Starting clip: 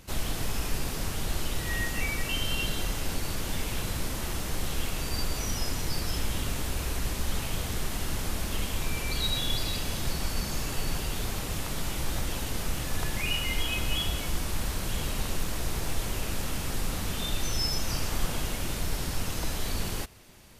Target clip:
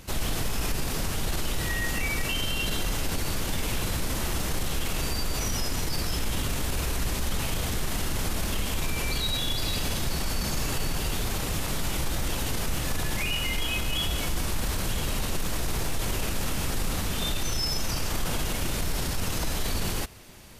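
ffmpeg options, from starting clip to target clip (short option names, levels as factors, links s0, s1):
-af "alimiter=limit=0.0631:level=0:latency=1:release=21,volume=1.78"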